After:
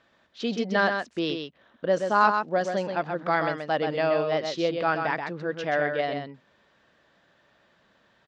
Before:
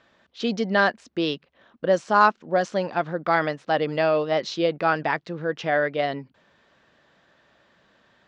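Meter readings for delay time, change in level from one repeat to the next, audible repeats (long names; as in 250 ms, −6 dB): 129 ms, repeats not evenly spaced, 1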